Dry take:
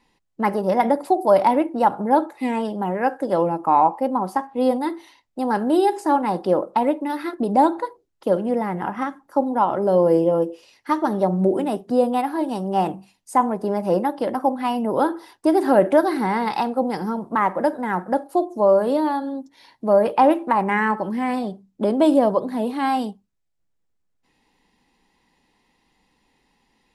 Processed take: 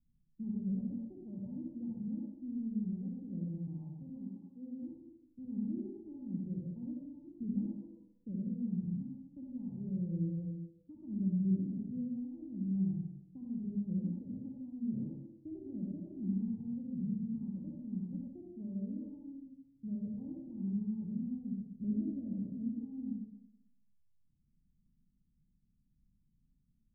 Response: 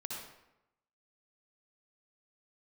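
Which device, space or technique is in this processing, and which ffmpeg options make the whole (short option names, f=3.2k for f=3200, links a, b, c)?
club heard from the street: -filter_complex "[0:a]asettb=1/sr,asplit=3[a][b][c];[a]atrim=end=4.024[d];[b]atrim=start=4.02:end=4.83,asetpts=PTS-STARTPTS,afade=t=in:d=0.004:c=qsin,afade=t=out:st=0.806:d=0.004:c=qsin,aemphasis=mode=production:type=bsi[e];[c]atrim=start=4.826[f];[d][e]acrossfade=d=0.004:c1=hsin:c2=qsin[g];[g][f]acrossfade=d=0.004:c1=qsin:c2=hsin,alimiter=limit=-9.5dB:level=0:latency=1:release=273,lowpass=f=160:w=0.5412,lowpass=f=160:w=1.3066[h];[1:a]atrim=start_sample=2205[i];[h][i]afir=irnorm=-1:irlink=0,volume=1dB"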